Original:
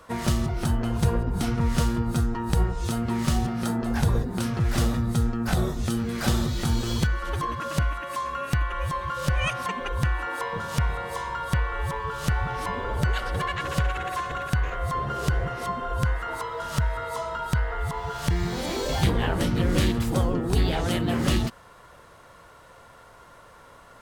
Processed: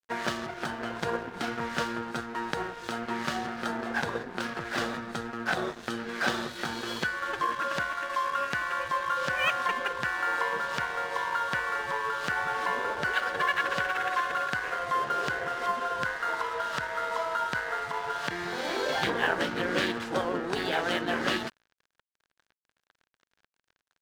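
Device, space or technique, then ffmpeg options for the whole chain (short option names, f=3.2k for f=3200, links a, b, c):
pocket radio on a weak battery: -af "highpass=380,lowpass=4.3k,aeval=exprs='sgn(val(0))*max(abs(val(0))-0.00708,0)':c=same,equalizer=f=1.6k:t=o:w=0.32:g=8,volume=2dB"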